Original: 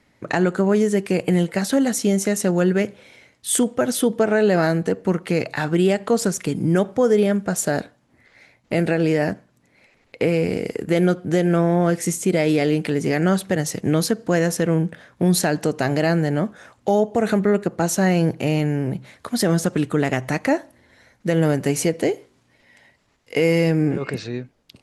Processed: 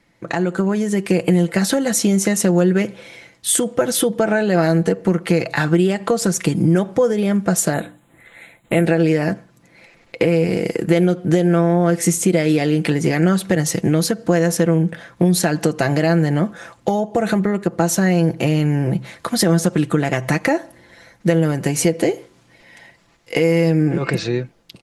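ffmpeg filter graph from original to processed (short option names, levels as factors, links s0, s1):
-filter_complex "[0:a]asettb=1/sr,asplit=3[s0][s1][s2];[s0]atrim=end=7.734[s3];[s1]atrim=start=7.73:end=8.85,asetpts=PTS-STARTPTS,afade=t=in:d=0.004:c=qsin,afade=t=out:st=1.116:d=0.004:c=qsin,asuperstop=centerf=5300:order=12:qfactor=1.8,highshelf=f=8500:g=12,bandreject=f=60:t=h:w=6,bandreject=f=120:t=h:w=6,bandreject=f=180:t=h:w=6,bandreject=f=240:t=h:w=6,bandreject=f=300:t=h:w=6,bandreject=f=360:t=h:w=6[s4];[s2]atrim=start=8.846[s5];[s3][s4]acrossfade=d=0.004:c1=hsin:c2=qsin[s6];[s6][s5]acrossfade=d=0.004:c1=qsin:c2=hsin,acompressor=threshold=0.0891:ratio=6,aecho=1:1:5.9:0.47,dynaudnorm=f=170:g=5:m=2.51"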